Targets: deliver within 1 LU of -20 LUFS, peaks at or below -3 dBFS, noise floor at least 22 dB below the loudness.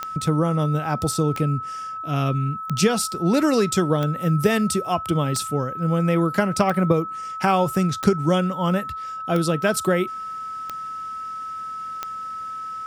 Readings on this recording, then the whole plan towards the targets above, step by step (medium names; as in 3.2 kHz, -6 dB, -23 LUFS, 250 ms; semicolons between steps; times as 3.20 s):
clicks found 10; steady tone 1.3 kHz; tone level -29 dBFS; loudness -23.0 LUFS; peak level -4.5 dBFS; loudness target -20.0 LUFS
-> de-click; band-stop 1.3 kHz, Q 30; trim +3 dB; peak limiter -3 dBFS